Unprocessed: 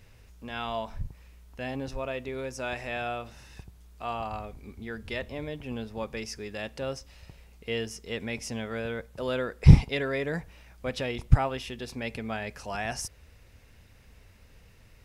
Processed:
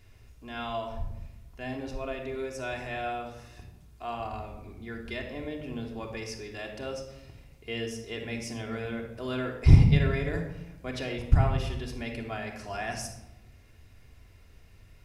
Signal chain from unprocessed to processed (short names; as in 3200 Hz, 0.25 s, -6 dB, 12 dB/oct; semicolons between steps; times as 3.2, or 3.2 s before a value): shoebox room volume 3700 m³, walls furnished, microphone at 3.2 m; gain -4.5 dB